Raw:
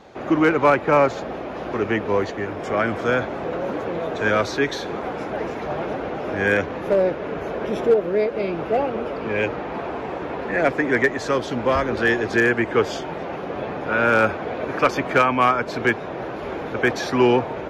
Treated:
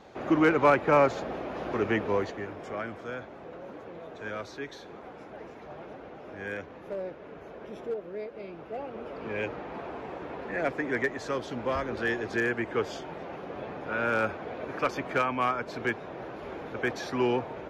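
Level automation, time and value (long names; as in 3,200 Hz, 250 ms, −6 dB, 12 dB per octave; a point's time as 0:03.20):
0:02.00 −5 dB
0:03.09 −17 dB
0:08.71 −17 dB
0:09.25 −10 dB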